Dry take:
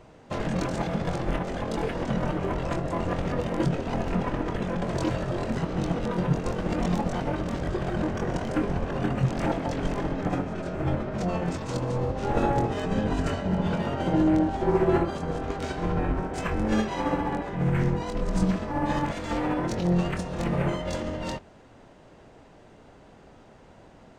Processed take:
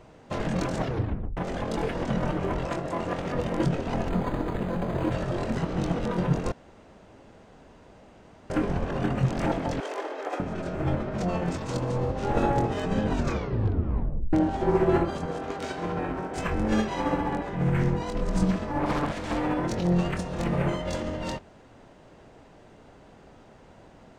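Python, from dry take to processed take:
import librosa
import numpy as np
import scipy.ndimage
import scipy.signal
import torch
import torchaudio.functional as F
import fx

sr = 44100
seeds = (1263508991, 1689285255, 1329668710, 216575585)

y = fx.low_shelf(x, sr, hz=120.0, db=-11.5, at=(2.66, 3.35))
y = fx.resample_linear(y, sr, factor=8, at=(4.09, 5.12))
y = fx.steep_highpass(y, sr, hz=370.0, slope=36, at=(9.8, 10.4))
y = fx.highpass(y, sr, hz=230.0, slope=6, at=(15.26, 16.36))
y = fx.doppler_dist(y, sr, depth_ms=0.73, at=(18.79, 19.36))
y = fx.edit(y, sr, fx.tape_stop(start_s=0.76, length_s=0.61),
    fx.room_tone_fill(start_s=6.52, length_s=1.98),
    fx.tape_stop(start_s=13.11, length_s=1.22), tone=tone)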